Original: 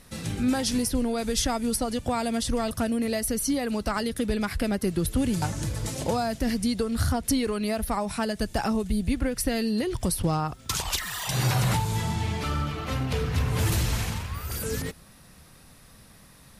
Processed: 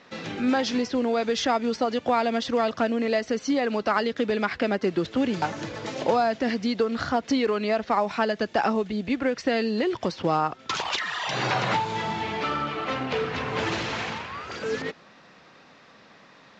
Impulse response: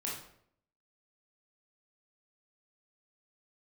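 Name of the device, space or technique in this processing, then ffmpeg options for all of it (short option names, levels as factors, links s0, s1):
telephone: -af "highpass=320,lowpass=3200,volume=2" -ar 16000 -c:a pcm_mulaw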